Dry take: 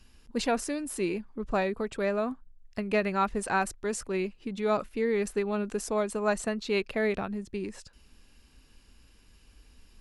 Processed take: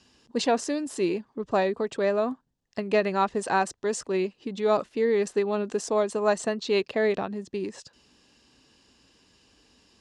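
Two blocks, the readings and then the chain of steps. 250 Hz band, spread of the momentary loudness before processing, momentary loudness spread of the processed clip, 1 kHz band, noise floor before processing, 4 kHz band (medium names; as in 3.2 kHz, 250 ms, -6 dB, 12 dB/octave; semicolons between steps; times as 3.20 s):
+1.5 dB, 8 LU, 8 LU, +3.5 dB, -60 dBFS, +4.5 dB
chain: cabinet simulation 160–7800 Hz, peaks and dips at 210 Hz -4 dB, 1.4 kHz -6 dB, 2.3 kHz -7 dB; trim +5 dB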